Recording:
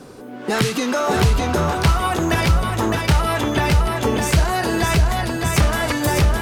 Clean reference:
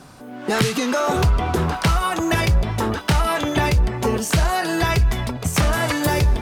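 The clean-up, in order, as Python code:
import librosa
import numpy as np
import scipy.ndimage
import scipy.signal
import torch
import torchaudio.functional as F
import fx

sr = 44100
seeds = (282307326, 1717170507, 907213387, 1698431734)

y = fx.noise_reduce(x, sr, print_start_s=0.0, print_end_s=0.5, reduce_db=6.0)
y = fx.fix_echo_inverse(y, sr, delay_ms=609, level_db=-4.0)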